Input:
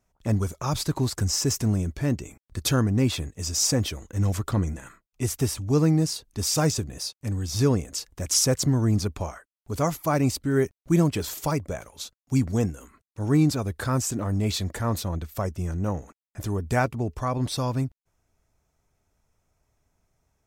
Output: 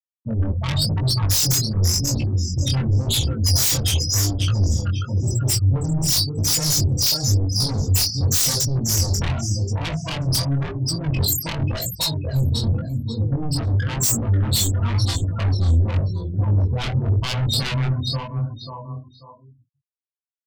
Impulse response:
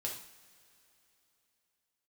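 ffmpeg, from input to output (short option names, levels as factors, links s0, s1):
-filter_complex "[0:a]areverse,acompressor=threshold=0.0251:ratio=6,areverse,bandreject=f=60:t=h:w=6,bandreject=f=120:t=h:w=6,bandreject=f=180:t=h:w=6,bandreject=f=240:t=h:w=6,bandreject=f=300:t=h:w=6,bandreject=f=360:t=h:w=6,bandreject=f=420:t=h:w=6,bandreject=f=480:t=h:w=6[s0];[1:a]atrim=start_sample=2205[s1];[s0][s1]afir=irnorm=-1:irlink=0,acrusher=bits=4:mode=log:mix=0:aa=0.000001,afftfilt=real='re*gte(hypot(re,im),0.0355)':imag='im*gte(hypot(re,im),0.0355)':win_size=1024:overlap=0.75,equalizer=f=1000:t=o:w=0.73:g=11.5,aecho=1:1:538|1076|1614:0.376|0.0752|0.015,asplit=2[s2][s3];[s3]asoftclip=type=tanh:threshold=0.0211,volume=0.316[s4];[s2][s4]amix=inputs=2:normalize=0,aemphasis=mode=production:type=75kf,aeval=exprs='0.178*sin(PI/2*5.01*val(0)/0.178)':c=same,acrossover=split=170|3000[s5][s6][s7];[s6]acompressor=threshold=0.0224:ratio=6[s8];[s5][s8][s7]amix=inputs=3:normalize=0,flanger=delay=17:depth=7.3:speed=0.92,volume=1.5"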